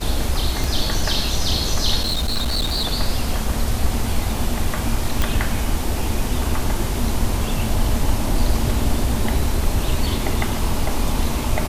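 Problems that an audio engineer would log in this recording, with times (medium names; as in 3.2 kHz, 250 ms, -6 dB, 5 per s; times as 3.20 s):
0.64 s: pop
2.02–2.85 s: clipped -17 dBFS
5.22 s: pop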